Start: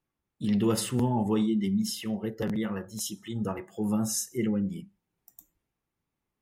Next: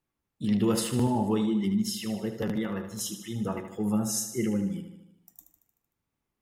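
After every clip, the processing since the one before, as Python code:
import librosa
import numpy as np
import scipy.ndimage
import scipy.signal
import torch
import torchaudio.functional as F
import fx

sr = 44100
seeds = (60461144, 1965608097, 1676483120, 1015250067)

y = fx.echo_feedback(x, sr, ms=76, feedback_pct=59, wet_db=-10.0)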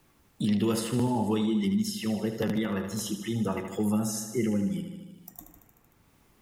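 y = fx.band_squash(x, sr, depth_pct=70)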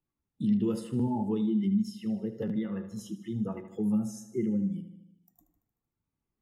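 y = fx.spectral_expand(x, sr, expansion=1.5)
y = y * 10.0 ** (-3.0 / 20.0)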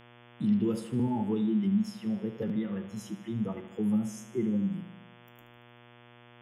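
y = fx.dmg_buzz(x, sr, base_hz=120.0, harmonics=29, level_db=-55.0, tilt_db=-3, odd_only=False)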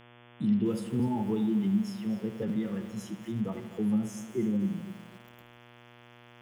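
y = fx.echo_crushed(x, sr, ms=250, feedback_pct=35, bits=8, wet_db=-13)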